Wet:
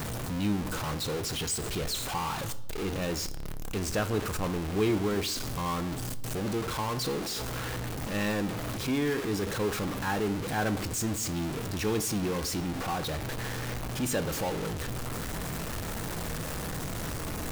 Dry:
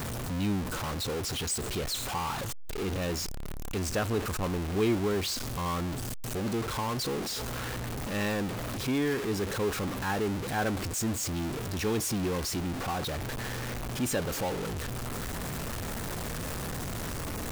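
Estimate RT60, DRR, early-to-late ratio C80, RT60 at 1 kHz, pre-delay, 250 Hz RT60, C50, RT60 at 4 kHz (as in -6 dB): 0.80 s, 11.0 dB, 19.0 dB, 0.75 s, 6 ms, 1.0 s, 16.5 dB, 0.70 s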